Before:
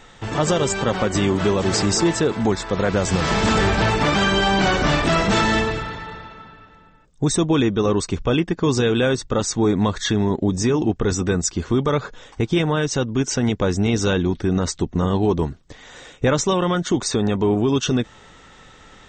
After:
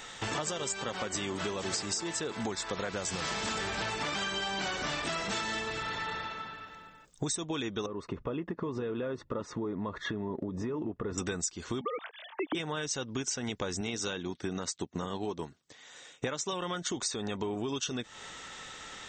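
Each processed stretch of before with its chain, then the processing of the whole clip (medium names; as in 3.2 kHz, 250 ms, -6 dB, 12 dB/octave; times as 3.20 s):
7.86–11.18 s: low-pass 1.2 kHz + compression 4:1, threshold -22 dBFS + comb of notches 780 Hz
11.81–12.55 s: formants replaced by sine waves + peaking EQ 1.4 kHz -5 dB 0.21 oct
13.81–16.53 s: high-pass 100 Hz + upward expansion, over -40 dBFS
whole clip: tilt EQ +2.5 dB/octave; compression 12:1, threshold -31 dBFS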